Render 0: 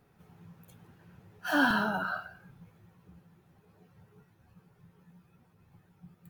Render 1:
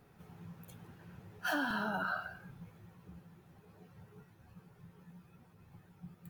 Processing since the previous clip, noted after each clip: compressor 10:1, threshold -34 dBFS, peak gain reduction 14 dB; gain +2.5 dB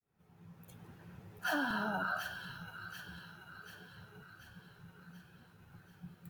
opening faded in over 0.91 s; thin delay 0.736 s, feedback 56%, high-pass 2100 Hz, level -4 dB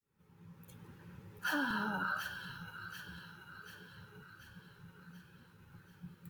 Butterworth band-stop 690 Hz, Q 3.3

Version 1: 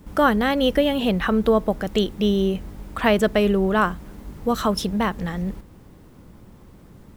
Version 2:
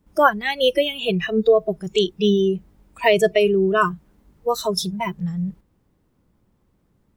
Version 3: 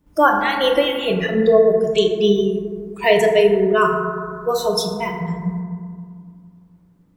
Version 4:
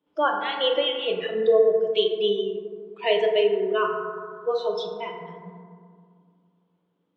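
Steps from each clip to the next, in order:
spectral noise reduction 22 dB; gain +4.5 dB
FDN reverb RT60 2.1 s, low-frequency decay 1.3×, high-frequency decay 0.3×, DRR 1 dB
speaker cabinet 350–3900 Hz, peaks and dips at 460 Hz +6 dB, 1900 Hz -4 dB, 3200 Hz +9 dB; gain -8.5 dB

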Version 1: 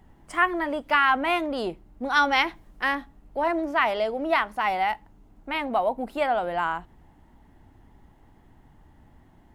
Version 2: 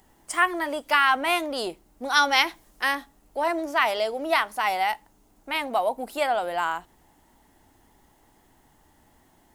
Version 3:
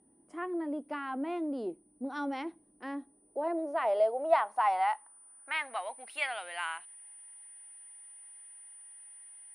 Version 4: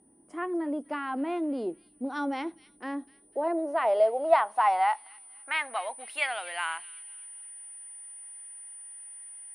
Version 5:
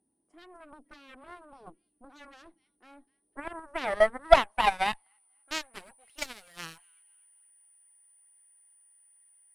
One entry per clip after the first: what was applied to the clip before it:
tone controls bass -10 dB, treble +14 dB
whine 9400 Hz -29 dBFS; band-pass sweep 280 Hz -> 2300 Hz, 2.84–6.07; gain +1 dB
thin delay 0.25 s, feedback 42%, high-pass 3100 Hz, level -13.5 dB; gain +4 dB
added harmonics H 2 -8 dB, 7 -16 dB, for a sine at -8 dBFS; phaser 1.2 Hz, delay 3.5 ms, feedback 22%; gain +2.5 dB

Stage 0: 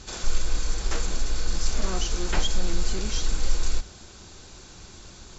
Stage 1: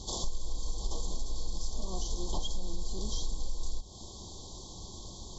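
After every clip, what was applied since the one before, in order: Chebyshev band-stop 1100–3200 Hz, order 5; compressor 5:1, threshold -29 dBFS, peak gain reduction 14 dB; gain +1 dB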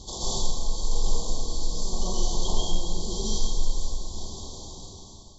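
ending faded out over 1.35 s; plate-style reverb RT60 1.6 s, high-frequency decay 0.85×, pre-delay 0.115 s, DRR -8.5 dB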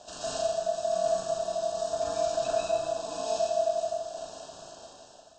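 ring modulator 660 Hz; flutter echo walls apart 6.5 m, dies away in 0.28 s; gain -5 dB

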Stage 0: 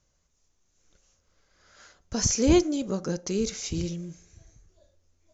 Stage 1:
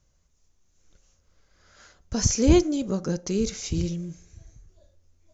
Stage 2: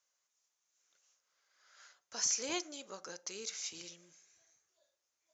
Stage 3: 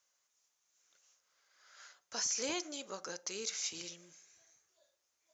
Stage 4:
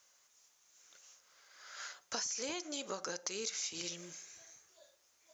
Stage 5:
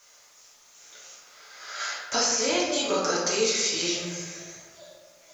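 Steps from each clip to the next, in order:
low shelf 180 Hz +7 dB
HPF 950 Hz 12 dB/oct; gain -6 dB
limiter -29.5 dBFS, peak gain reduction 8.5 dB; gain +3.5 dB
compressor 12:1, threshold -46 dBFS, peak gain reduction 15 dB; gain +10 dB
reverb RT60 1.3 s, pre-delay 3 ms, DRR -7 dB; gain +8.5 dB

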